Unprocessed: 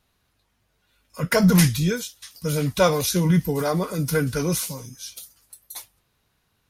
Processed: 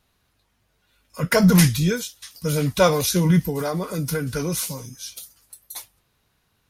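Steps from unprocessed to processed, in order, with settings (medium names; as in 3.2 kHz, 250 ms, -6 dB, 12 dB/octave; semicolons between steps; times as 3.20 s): 3.39–4.58 s: compression, threshold -23 dBFS, peak gain reduction 7 dB; trim +1.5 dB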